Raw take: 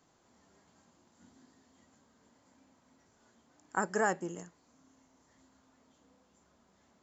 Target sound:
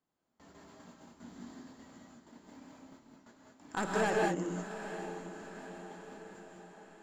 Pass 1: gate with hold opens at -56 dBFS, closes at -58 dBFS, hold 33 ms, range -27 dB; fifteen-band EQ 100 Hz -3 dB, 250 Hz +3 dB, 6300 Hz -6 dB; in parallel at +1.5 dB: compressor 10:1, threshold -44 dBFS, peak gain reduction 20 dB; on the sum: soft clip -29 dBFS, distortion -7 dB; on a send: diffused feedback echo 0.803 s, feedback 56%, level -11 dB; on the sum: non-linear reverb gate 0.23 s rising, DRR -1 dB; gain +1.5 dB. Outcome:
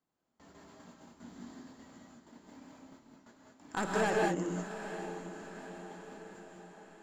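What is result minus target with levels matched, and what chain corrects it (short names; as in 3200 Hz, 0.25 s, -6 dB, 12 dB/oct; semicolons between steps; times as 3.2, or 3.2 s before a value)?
compressor: peak gain reduction -7 dB
gate with hold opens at -56 dBFS, closes at -58 dBFS, hold 33 ms, range -27 dB; fifteen-band EQ 100 Hz -3 dB, 250 Hz +3 dB, 6300 Hz -6 dB; in parallel at +1.5 dB: compressor 10:1, threshold -51.5 dBFS, peak gain reduction 27 dB; on the sum: soft clip -29 dBFS, distortion -7 dB; on a send: diffused feedback echo 0.803 s, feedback 56%, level -11 dB; on the sum: non-linear reverb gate 0.23 s rising, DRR -1 dB; gain +1.5 dB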